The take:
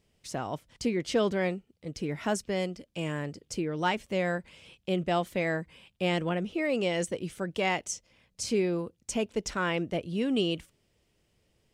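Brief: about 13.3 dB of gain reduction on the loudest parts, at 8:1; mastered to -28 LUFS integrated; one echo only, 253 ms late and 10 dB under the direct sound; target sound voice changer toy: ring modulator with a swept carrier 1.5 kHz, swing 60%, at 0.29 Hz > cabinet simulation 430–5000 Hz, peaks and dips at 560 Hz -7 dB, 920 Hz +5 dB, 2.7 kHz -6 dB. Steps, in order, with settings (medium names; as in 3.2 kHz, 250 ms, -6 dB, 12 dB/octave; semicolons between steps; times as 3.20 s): compression 8:1, threshold -36 dBFS; delay 253 ms -10 dB; ring modulator with a swept carrier 1.5 kHz, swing 60%, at 0.29 Hz; cabinet simulation 430–5000 Hz, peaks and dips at 560 Hz -7 dB, 920 Hz +5 dB, 2.7 kHz -6 dB; trim +15.5 dB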